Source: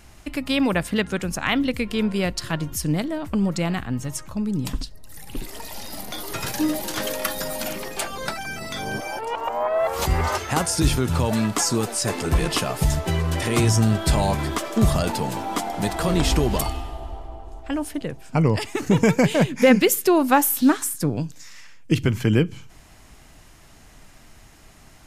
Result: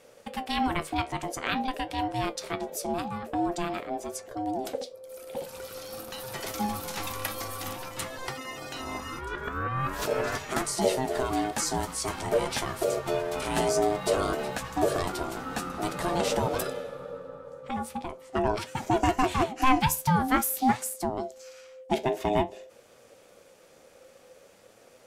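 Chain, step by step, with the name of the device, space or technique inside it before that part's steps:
alien voice (ring modulation 520 Hz; flanger 0.48 Hz, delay 7.7 ms, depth 6.3 ms, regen +66%)

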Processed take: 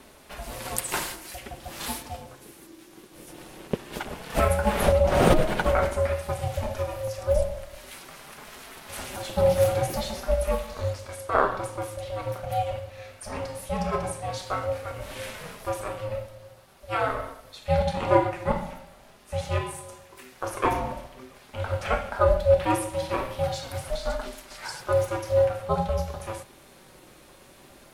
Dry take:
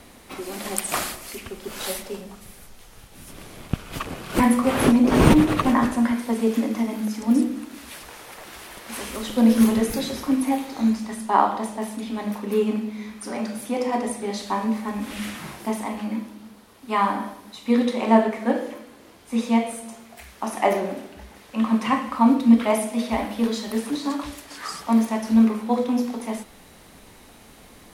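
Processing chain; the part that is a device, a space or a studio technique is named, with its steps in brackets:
alien voice (ring modulation 320 Hz; flanger 0.46 Hz, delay 4.5 ms, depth 1.2 ms, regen −46%)
level +3.5 dB

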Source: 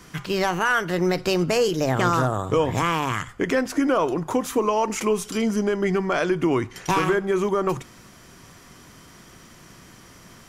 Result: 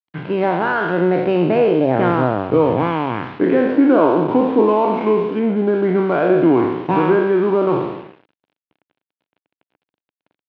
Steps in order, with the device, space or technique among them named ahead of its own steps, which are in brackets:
peak hold with a decay on every bin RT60 1.23 s
low-pass filter 1,500 Hz 12 dB per octave
0:05.39–0:06.07: low-pass filter 2,100 Hz
blown loudspeaker (dead-zone distortion −38 dBFS; loudspeaker in its box 140–3,500 Hz, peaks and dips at 300 Hz +4 dB, 1,200 Hz −8 dB, 1,900 Hz −6 dB)
level +5.5 dB

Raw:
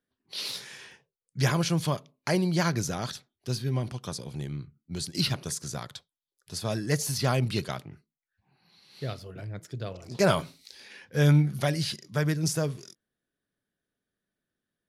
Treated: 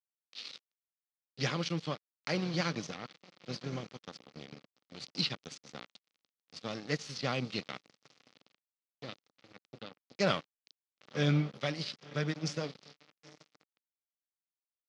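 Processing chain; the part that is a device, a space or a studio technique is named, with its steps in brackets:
0:02.96–0:03.51: low-pass filter 2,400 Hz → 5,200 Hz 12 dB per octave
feedback delay with all-pass diffusion 949 ms, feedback 45%, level −13 dB
blown loudspeaker (dead-zone distortion −33.5 dBFS; loudspeaker in its box 220–5,200 Hz, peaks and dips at 380 Hz −8 dB, 660 Hz −7 dB, 950 Hz −9 dB, 1,600 Hz −6 dB)

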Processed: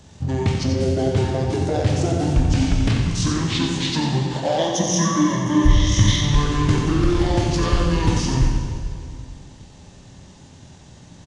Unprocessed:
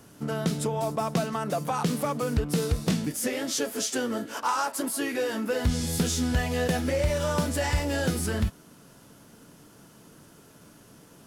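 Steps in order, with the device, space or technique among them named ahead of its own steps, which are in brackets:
0:04.58–0:06.24: EQ curve with evenly spaced ripples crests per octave 1.2, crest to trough 14 dB
feedback echo with a band-pass in the loop 89 ms, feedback 51%, band-pass 1,200 Hz, level −16.5 dB
monster voice (pitch shifter −9 semitones; low-shelf EQ 170 Hz +4.5 dB; single-tap delay 89 ms −7.5 dB; convolution reverb RT60 2.1 s, pre-delay 10 ms, DRR 1.5 dB)
level +3.5 dB

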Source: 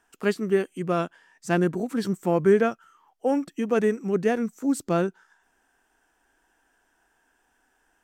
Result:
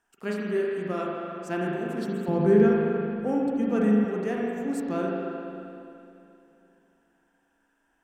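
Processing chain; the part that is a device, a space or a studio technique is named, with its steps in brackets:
dub delay into a spring reverb (feedback echo with a low-pass in the loop 265 ms, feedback 71%, low-pass 1,300 Hz, level −23 dB; spring reverb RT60 2.8 s, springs 38/43 ms, chirp 40 ms, DRR −3.5 dB)
0:02.28–0:04.05: bass and treble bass +12 dB, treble −1 dB
level −8.5 dB

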